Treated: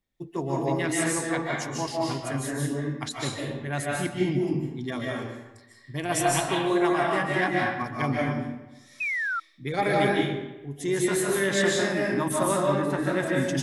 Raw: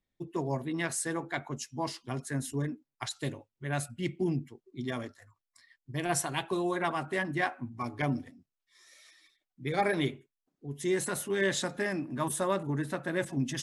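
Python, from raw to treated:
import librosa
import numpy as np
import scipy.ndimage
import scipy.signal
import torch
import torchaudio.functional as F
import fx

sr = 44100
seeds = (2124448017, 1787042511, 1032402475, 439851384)

y = fx.rev_freeverb(x, sr, rt60_s=1.0, hf_ratio=0.75, predelay_ms=110, drr_db=-3.5)
y = fx.spec_paint(y, sr, seeds[0], shape='fall', start_s=9.0, length_s=0.4, low_hz=1300.0, high_hz=2600.0, level_db=-30.0)
y = y * 10.0 ** (2.0 / 20.0)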